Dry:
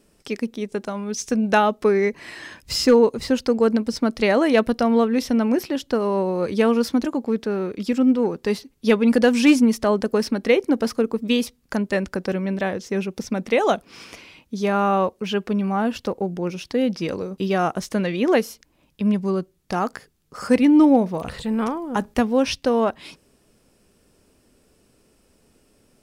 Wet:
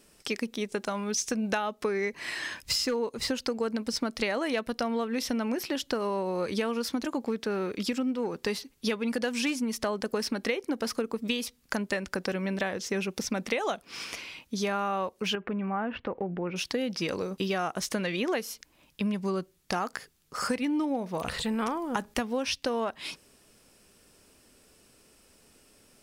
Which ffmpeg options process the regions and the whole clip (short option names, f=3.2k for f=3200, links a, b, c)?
-filter_complex "[0:a]asettb=1/sr,asplit=3[a][b][c];[a]atrim=end=15.354[d];[b]atrim=start=15.35:end=16.56,asetpts=PTS-STARTPTS,afade=t=in:d=0.004:c=qsin,afade=t=out:st=1.206:d=0.004:c=qsin,lowpass=f=2.3k:w=0.5412,lowpass=f=2.3k:w=1.3066,acompressor=threshold=-25dB:ratio=3:attack=3.2:release=140:knee=1:detection=peak[e];[c]atrim=start=16.556[f];[d][e]acrossfade=d=0.004:c1=hsin:c2=qsin[g];[g][f]acrossfade=d=0.004:c1=qsin:c2=hsin,tiltshelf=f=810:g=-4.5,acompressor=threshold=-26dB:ratio=10"